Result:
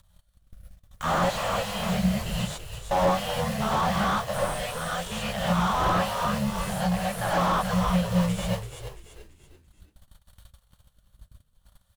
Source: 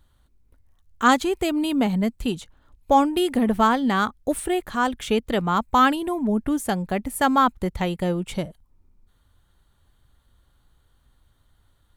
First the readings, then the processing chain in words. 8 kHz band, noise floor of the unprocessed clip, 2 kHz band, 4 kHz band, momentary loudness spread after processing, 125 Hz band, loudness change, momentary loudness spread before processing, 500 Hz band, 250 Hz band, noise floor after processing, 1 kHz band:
-0.5 dB, -64 dBFS, -3.5 dB, -0.5 dB, 7 LU, +4.0 dB, -4.0 dB, 9 LU, -3.0 dB, -6.0 dB, -66 dBFS, -4.0 dB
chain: cycle switcher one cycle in 3, muted; treble shelf 4.2 kHz +11.5 dB; gated-style reverb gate 160 ms rising, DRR -7.5 dB; in parallel at -4 dB: sample-and-hold 19×; on the sum: elliptic band-stop 200–570 Hz; gate -45 dBFS, range -33 dB; rotary cabinet horn 0.65 Hz; upward compressor, threshold -28 dBFS; on a send: frequency-shifting echo 337 ms, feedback 40%, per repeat -64 Hz, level -11.5 dB; on the sum: slew-rate limiter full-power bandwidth 180 Hz; trim -6.5 dB

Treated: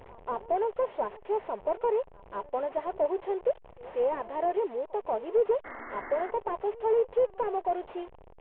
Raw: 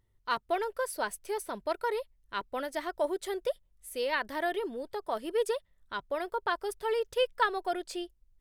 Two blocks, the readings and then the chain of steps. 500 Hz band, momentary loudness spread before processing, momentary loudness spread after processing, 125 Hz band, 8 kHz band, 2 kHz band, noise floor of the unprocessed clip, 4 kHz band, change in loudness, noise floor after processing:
+4.5 dB, 9 LU, 11 LU, no reading, under -35 dB, -10.0 dB, -70 dBFS, under -15 dB, +3.0 dB, -53 dBFS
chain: one-bit delta coder 16 kbps, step -40 dBFS; high-order bell 630 Hz +13.5 dB; pre-echo 187 ms -22 dB; painted sound noise, 5.64–6.31 s, 220–2200 Hz -35 dBFS; trim -7.5 dB

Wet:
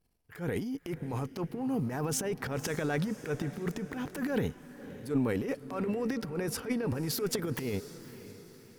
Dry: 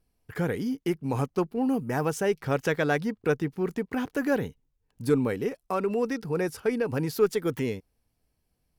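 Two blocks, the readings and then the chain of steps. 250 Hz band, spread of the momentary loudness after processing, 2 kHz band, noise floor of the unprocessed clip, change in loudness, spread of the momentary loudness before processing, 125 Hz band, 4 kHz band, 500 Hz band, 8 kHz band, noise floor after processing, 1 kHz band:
-4.5 dB, 14 LU, -6.5 dB, -76 dBFS, -5.5 dB, 6 LU, -3.0 dB, +0.5 dB, -8.0 dB, +3.5 dB, -55 dBFS, -8.0 dB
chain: transient shaper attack -10 dB, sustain +11 dB; echo that smears into a reverb 557 ms, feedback 47%, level -14.5 dB; trim -5.5 dB

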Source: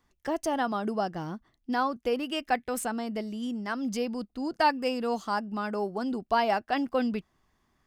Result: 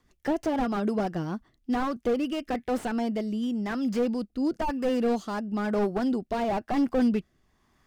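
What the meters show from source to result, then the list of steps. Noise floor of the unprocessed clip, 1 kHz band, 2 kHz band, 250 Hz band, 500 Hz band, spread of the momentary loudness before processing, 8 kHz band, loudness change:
-73 dBFS, -3.5 dB, -4.0 dB, +5.0 dB, +2.0 dB, 8 LU, no reading, +2.0 dB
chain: rotary cabinet horn 6.3 Hz, later 1 Hz, at 0.80 s; slew-rate limiter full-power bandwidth 18 Hz; trim +6.5 dB

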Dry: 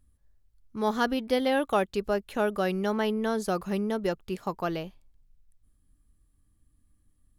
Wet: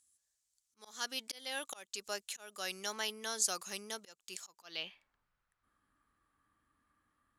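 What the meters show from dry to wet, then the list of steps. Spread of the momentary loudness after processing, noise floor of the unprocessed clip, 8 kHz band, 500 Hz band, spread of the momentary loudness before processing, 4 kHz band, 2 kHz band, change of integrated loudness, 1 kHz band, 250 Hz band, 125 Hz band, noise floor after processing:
14 LU, -67 dBFS, +10.0 dB, -20.0 dB, 8 LU, -0.5 dB, -8.5 dB, -11.0 dB, -16.0 dB, -25.0 dB, under -25 dB, -84 dBFS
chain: slow attack 363 ms; band-pass sweep 7.2 kHz -> 1.3 kHz, 4.56–5.13 s; trim +15 dB

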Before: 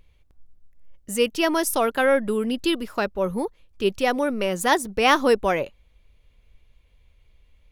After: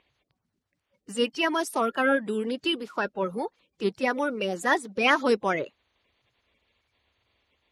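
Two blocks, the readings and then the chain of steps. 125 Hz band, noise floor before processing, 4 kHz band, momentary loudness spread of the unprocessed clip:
-5.0 dB, -59 dBFS, -3.0 dB, 8 LU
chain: coarse spectral quantiser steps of 30 dB; band-pass 190–6900 Hz; trim -3 dB

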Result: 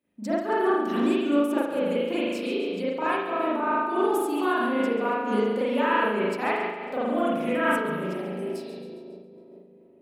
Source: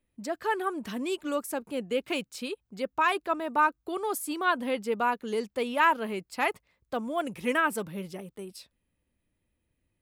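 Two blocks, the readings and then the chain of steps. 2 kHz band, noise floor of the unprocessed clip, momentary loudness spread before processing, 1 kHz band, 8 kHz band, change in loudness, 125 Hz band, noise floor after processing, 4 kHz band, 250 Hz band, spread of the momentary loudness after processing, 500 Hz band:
+0.5 dB, -79 dBFS, 12 LU, +1.5 dB, -5.0 dB, +4.0 dB, no reading, -52 dBFS, +0.5 dB, +8.5 dB, 8 LU, +6.5 dB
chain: high-pass 250 Hz 12 dB/octave; bass shelf 340 Hz +11 dB; compression, threshold -27 dBFS, peak gain reduction 10 dB; two-band feedback delay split 640 Hz, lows 439 ms, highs 137 ms, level -11 dB; spring tank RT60 1.4 s, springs 38 ms, chirp 45 ms, DRR -9.5 dB; random flutter of the level, depth 65%

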